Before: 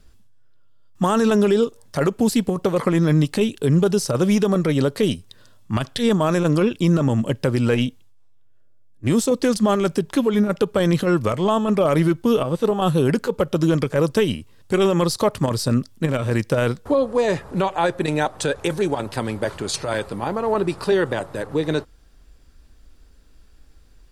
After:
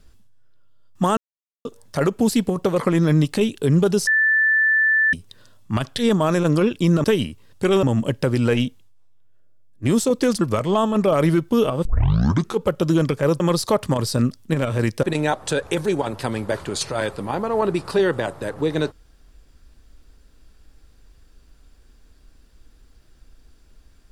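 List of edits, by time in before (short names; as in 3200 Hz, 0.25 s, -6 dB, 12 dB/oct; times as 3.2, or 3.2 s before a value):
1.17–1.65 mute
4.07–5.13 bleep 1760 Hz -14 dBFS
9.62–11.14 cut
12.58 tape start 0.76 s
14.13–14.92 move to 7.04
16.55–17.96 cut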